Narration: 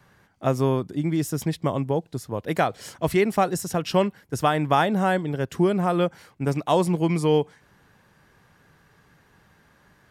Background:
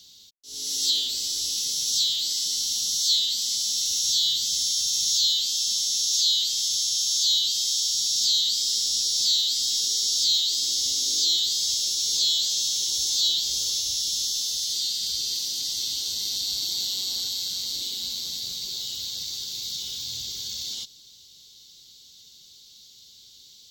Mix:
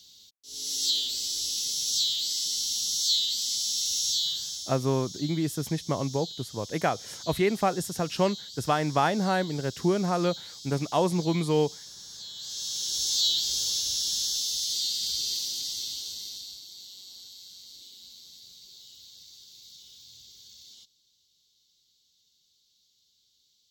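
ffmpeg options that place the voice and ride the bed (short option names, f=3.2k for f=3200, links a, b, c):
-filter_complex "[0:a]adelay=4250,volume=-4dB[a];[1:a]volume=14.5dB,afade=t=out:st=4.01:d=0.78:silence=0.149624,afade=t=in:st=12.34:d=0.79:silence=0.133352,afade=t=out:st=15.29:d=1.34:silence=0.158489[b];[a][b]amix=inputs=2:normalize=0"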